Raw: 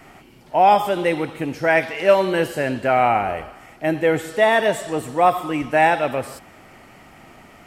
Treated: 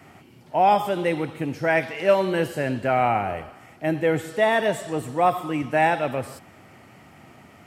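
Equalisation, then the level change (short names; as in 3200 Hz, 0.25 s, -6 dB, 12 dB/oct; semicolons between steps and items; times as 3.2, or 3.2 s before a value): HPF 86 Hz 24 dB/oct; low shelf 150 Hz +10 dB; -4.5 dB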